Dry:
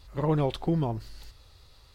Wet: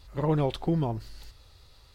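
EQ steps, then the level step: band-stop 1.1 kHz, Q 30; 0.0 dB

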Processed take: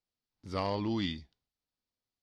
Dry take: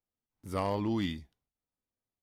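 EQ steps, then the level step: resonant low-pass 4.7 kHz, resonance Q 2.7; -1.5 dB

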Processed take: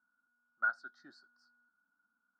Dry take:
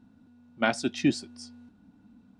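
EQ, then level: two resonant band-passes 2.5 kHz, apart 1.6 oct; resonant high shelf 2 kHz -11 dB, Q 3; -7.0 dB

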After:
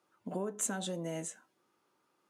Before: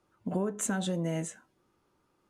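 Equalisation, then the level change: bass shelf 410 Hz -8 dB; dynamic bell 1.8 kHz, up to -5 dB, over -54 dBFS, Q 0.73; high-pass 160 Hz 12 dB/octave; 0.0 dB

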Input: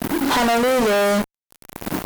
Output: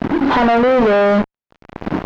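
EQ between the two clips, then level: distance through air 210 m; treble shelf 3.7 kHz -10 dB; +6.0 dB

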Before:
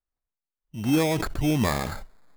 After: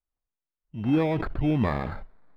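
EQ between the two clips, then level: distance through air 440 m; 0.0 dB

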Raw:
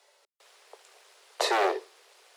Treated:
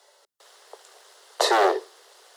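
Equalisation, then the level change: peaking EQ 2.4 kHz -11 dB 0.31 oct; +6.0 dB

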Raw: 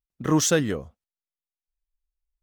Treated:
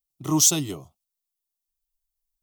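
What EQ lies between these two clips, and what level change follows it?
treble shelf 2.5 kHz +9.5 dB; treble shelf 12 kHz +6.5 dB; static phaser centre 330 Hz, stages 8; -1.5 dB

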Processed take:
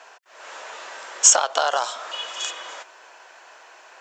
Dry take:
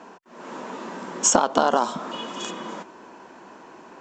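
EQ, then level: high-pass 690 Hz 24 dB/octave; peaking EQ 970 Hz -11 dB 0.8 oct; +6.5 dB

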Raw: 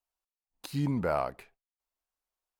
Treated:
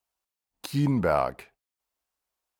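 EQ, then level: high-pass 42 Hz; +5.5 dB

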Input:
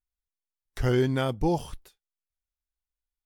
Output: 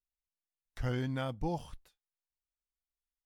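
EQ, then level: peaking EQ 390 Hz -10.5 dB 0.31 oct; treble shelf 6.3 kHz -6.5 dB; -8.0 dB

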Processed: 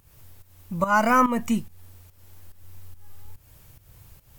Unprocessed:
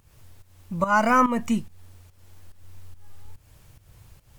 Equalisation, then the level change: peaking EQ 15 kHz +11 dB 0.58 oct; 0.0 dB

